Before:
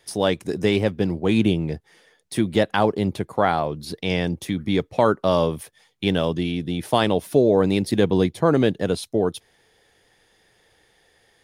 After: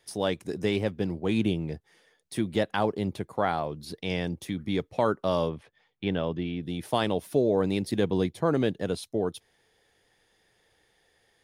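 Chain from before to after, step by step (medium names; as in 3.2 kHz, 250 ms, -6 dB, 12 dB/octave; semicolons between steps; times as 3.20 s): 5.49–6.63 s: low-pass 2.9 kHz 12 dB/octave; trim -7 dB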